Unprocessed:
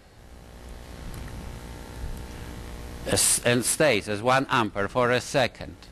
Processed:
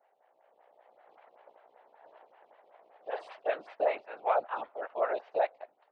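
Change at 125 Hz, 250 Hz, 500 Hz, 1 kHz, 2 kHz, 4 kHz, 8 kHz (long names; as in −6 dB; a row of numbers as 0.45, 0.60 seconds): below −40 dB, −25.0 dB, −6.5 dB, −6.5 dB, −15.5 dB, −26.0 dB, below −40 dB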